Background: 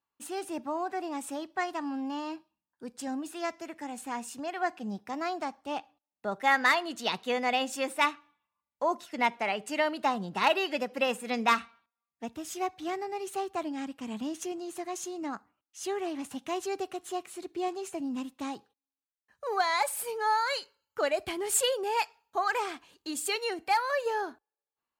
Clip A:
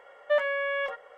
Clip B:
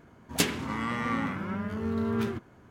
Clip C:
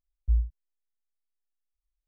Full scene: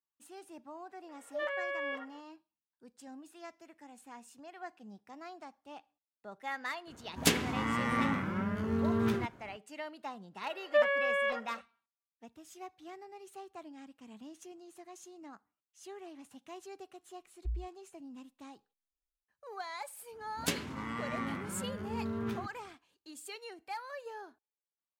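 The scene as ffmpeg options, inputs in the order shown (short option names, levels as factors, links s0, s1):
-filter_complex "[1:a]asplit=2[s0][s1];[2:a]asplit=2[s2][s3];[0:a]volume=0.188[s4];[s0]acrossover=split=570[s5][s6];[s6]adelay=50[s7];[s5][s7]amix=inputs=2:normalize=0,atrim=end=1.17,asetpts=PTS-STARTPTS,volume=0.422,afade=t=in:d=0.004:c=hsin,afade=t=out:st=1.166:d=0.004:c=hsin,adelay=1040[s8];[s2]atrim=end=2.7,asetpts=PTS-STARTPTS,volume=0.891,afade=t=in:d=0.004:c=hsin,afade=t=out:st=2.696:d=0.004:c=hsin,adelay=6870[s9];[s1]atrim=end=1.17,asetpts=PTS-STARTPTS,volume=0.841,afade=t=in:d=0.004:c=hsin,afade=t=out:st=1.166:d=0.004:c=hsin,adelay=10440[s10];[3:a]atrim=end=2.07,asetpts=PTS-STARTPTS,volume=0.237,afade=t=in:d=0.004:c=hsin,afade=t=out:st=2.066:d=0.004:c=hsin,adelay=17170[s11];[s3]atrim=end=2.7,asetpts=PTS-STARTPTS,volume=0.422,afade=t=in:d=0.1,afade=t=out:st=2.6:d=0.1,adelay=20080[s12];[s4][s8][s9][s10][s11][s12]amix=inputs=6:normalize=0"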